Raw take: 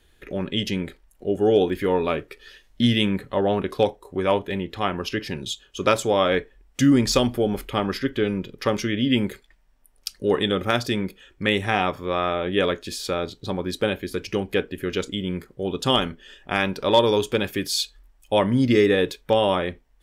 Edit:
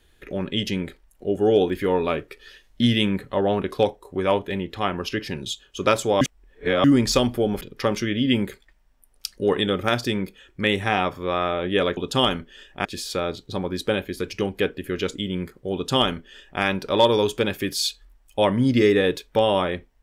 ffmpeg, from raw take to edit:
-filter_complex "[0:a]asplit=6[s0][s1][s2][s3][s4][s5];[s0]atrim=end=6.212[s6];[s1]atrim=start=6.208:end=6.842,asetpts=PTS-STARTPTS,areverse[s7];[s2]atrim=start=6.838:end=7.612[s8];[s3]atrim=start=8.428:end=12.792[s9];[s4]atrim=start=15.678:end=16.562[s10];[s5]atrim=start=12.788[s11];[s6][s7]acrossfade=d=0.004:c1=hsin:c2=hsin[s12];[s12][s8]acrossfade=d=0.004:c1=hsin:c2=hsin[s13];[s13][s9]acrossfade=d=0.004:c1=hsin:c2=hsin[s14];[s14][s10]acrossfade=d=0.004:c1=hsin:c2=hsin[s15];[s15][s11]acrossfade=d=0.004:c1=hsin:c2=hsin"

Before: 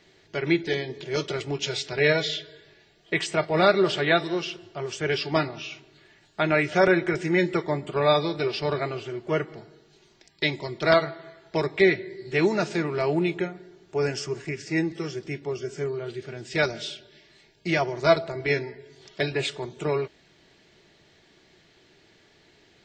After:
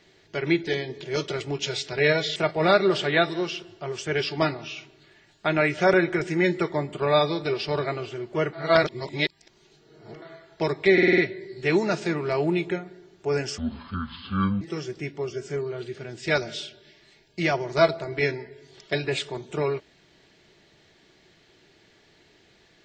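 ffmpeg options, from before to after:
-filter_complex "[0:a]asplit=11[s0][s1][s2][s3][s4][s5][s6][s7][s8][s9][s10];[s0]atrim=end=2.362[s11];[s1]atrim=start=3.298:end=9.472[s12];[s2]atrim=start=9.468:end=11.162,asetpts=PTS-STARTPTS,areverse[s13];[s3]atrim=start=11.158:end=11.922[s14];[s4]atrim=start=11.868:end=11.922[s15];[s5]atrim=start=11.868:end=11.922[s16];[s6]atrim=start=11.868:end=11.922[s17];[s7]atrim=start=11.868:end=11.922[s18];[s8]atrim=start=11.868:end=14.274[s19];[s9]atrim=start=14.27:end=14.89,asetpts=PTS-STARTPTS,asetrate=26460,aresample=44100[s20];[s10]atrim=start=14.886[s21];[s11][s12]acrossfade=d=0.004:c1=hsin:c2=hsin[s22];[s22][s13]acrossfade=d=0.004:c1=hsin:c2=hsin[s23];[s23][s14]acrossfade=d=0.004:c1=hsin:c2=hsin[s24];[s24][s15]acrossfade=d=0.004:c1=hsin:c2=hsin[s25];[s25][s16]acrossfade=d=0.004:c1=hsin:c2=hsin[s26];[s26][s17]acrossfade=d=0.004:c1=hsin:c2=hsin[s27];[s27][s18]acrossfade=d=0.004:c1=hsin:c2=hsin[s28];[s28][s19]acrossfade=d=0.004:c1=hsin:c2=hsin[s29];[s29][s20]acrossfade=d=0.004:c1=hsin:c2=hsin[s30];[s30][s21]acrossfade=d=0.004:c1=hsin:c2=hsin"

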